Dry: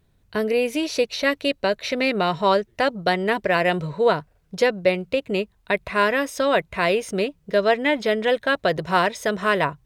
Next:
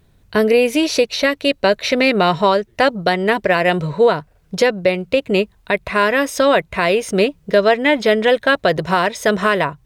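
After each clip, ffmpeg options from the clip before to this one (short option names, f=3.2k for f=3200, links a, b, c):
-af "alimiter=limit=-12.5dB:level=0:latency=1:release=399,volume=8.5dB"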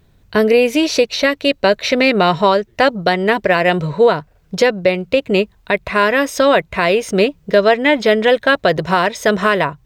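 -af "equalizer=f=10k:t=o:w=0.36:g=-6.5,volume=1.5dB"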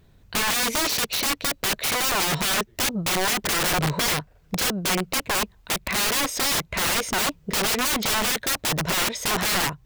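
-af "aeval=exprs='(mod(5.96*val(0)+1,2)-1)/5.96':c=same,volume=-2.5dB"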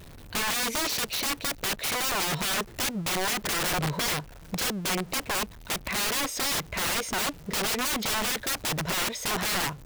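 -af "aeval=exprs='val(0)+0.5*0.0158*sgn(val(0))':c=same,volume=-5.5dB"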